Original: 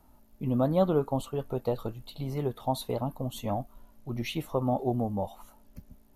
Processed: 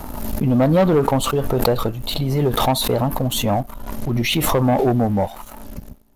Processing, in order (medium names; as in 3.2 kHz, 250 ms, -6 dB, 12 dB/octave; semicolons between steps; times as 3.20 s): waveshaping leveller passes 2; swell ahead of each attack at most 33 dB/s; trim +5 dB